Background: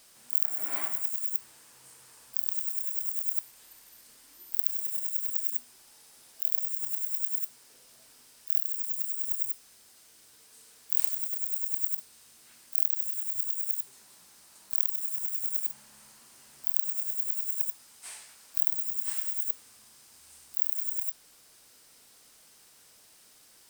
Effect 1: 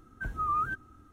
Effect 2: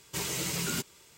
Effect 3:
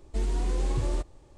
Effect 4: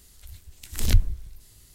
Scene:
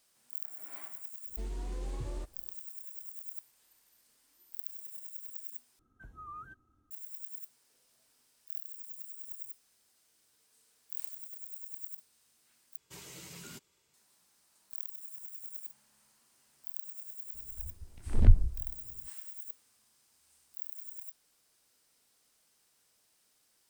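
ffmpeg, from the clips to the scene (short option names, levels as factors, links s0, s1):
-filter_complex "[0:a]volume=0.211[s0];[1:a]equalizer=f=2100:t=o:w=1.2:g=-4[s1];[4:a]lowpass=1000[s2];[s0]asplit=3[s3][s4][s5];[s3]atrim=end=5.794[s6];[s1]atrim=end=1.12,asetpts=PTS-STARTPTS,volume=0.168[s7];[s4]atrim=start=6.906:end=12.774[s8];[2:a]atrim=end=1.17,asetpts=PTS-STARTPTS,volume=0.158[s9];[s5]atrim=start=13.936[s10];[3:a]atrim=end=1.37,asetpts=PTS-STARTPTS,volume=0.282,afade=t=in:d=0.1,afade=t=out:st=1.27:d=0.1,adelay=1230[s11];[s2]atrim=end=1.74,asetpts=PTS-STARTPTS,volume=0.891,afade=t=in:d=0.004:c=hsin,afade=t=out:st=1.736:d=0.004:c=hsin,adelay=17340[s12];[s6][s7]acrossfade=d=0.004:c1=hsin:c2=hsin[s13];[s13][s8]acrossfade=d=0.004:c1=hsin:c2=hsin[s14];[s14][s9]acrossfade=d=0.004:c1=hsin:c2=hsin[s15];[s15][s10]acrossfade=d=0.004:c1=hsin:c2=hsin[s16];[s16][s11][s12]amix=inputs=3:normalize=0"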